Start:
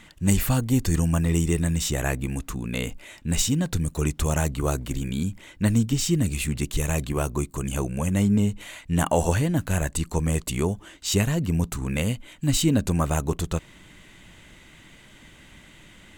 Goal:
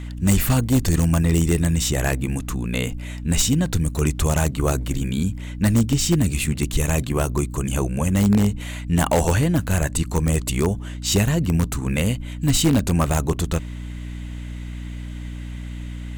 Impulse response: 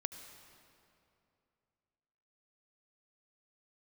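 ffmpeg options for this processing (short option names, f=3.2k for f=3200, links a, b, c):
-filter_complex "[0:a]aeval=exprs='val(0)+0.02*(sin(2*PI*60*n/s)+sin(2*PI*2*60*n/s)/2+sin(2*PI*3*60*n/s)/3+sin(2*PI*4*60*n/s)/4+sin(2*PI*5*60*n/s)/5)':c=same,asplit=2[a][b];[b]aeval=exprs='(mod(4.47*val(0)+1,2)-1)/4.47':c=same,volume=-9.5dB[c];[a][c]amix=inputs=2:normalize=0,volume=1.5dB"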